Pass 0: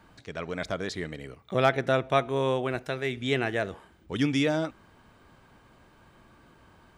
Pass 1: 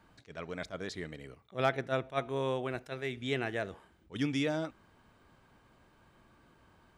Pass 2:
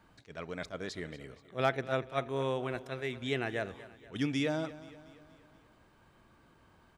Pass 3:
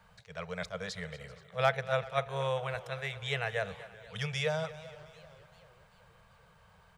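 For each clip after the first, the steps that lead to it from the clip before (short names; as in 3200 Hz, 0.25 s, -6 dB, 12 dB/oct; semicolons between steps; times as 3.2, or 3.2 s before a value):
attack slew limiter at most 330 dB/s; gain -6.5 dB
feedback echo 0.238 s, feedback 53%, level -17 dB
elliptic band-stop 190–460 Hz; warbling echo 0.391 s, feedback 56%, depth 160 cents, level -21.5 dB; gain +3 dB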